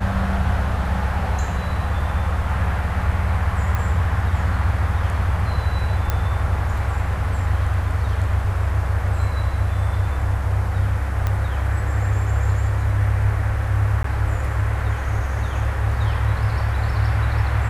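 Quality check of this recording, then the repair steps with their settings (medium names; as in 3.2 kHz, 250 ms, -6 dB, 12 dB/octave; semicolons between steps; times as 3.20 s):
3.75 s: pop -12 dBFS
6.10 s: pop -8 dBFS
11.27 s: pop -11 dBFS
14.03–14.04 s: dropout 13 ms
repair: de-click; interpolate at 14.03 s, 13 ms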